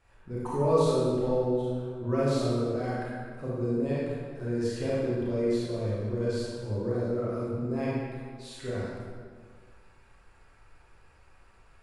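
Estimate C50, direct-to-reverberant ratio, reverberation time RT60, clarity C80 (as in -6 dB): -4.0 dB, -8.0 dB, 1.8 s, -1.0 dB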